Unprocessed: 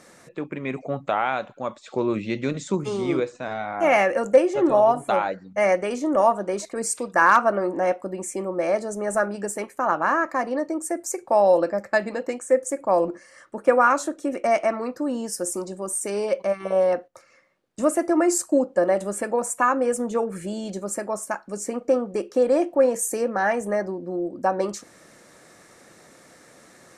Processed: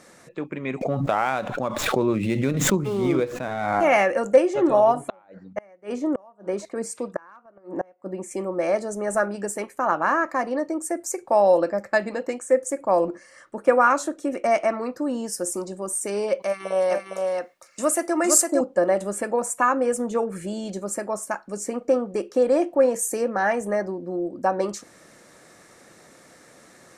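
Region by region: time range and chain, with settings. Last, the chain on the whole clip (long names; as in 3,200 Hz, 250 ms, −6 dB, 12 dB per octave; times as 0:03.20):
0:00.81–0:03.84: running median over 9 samples + low-shelf EQ 160 Hz +6.5 dB + background raised ahead of every attack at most 36 dB per second
0:05.08–0:08.31: high-pass filter 48 Hz 24 dB per octave + high-shelf EQ 2,700 Hz −9.5 dB + gate with flip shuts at −15 dBFS, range −31 dB
0:16.42–0:18.61: spectral tilt +2.5 dB per octave + single-tap delay 458 ms −3.5 dB
whole clip: no processing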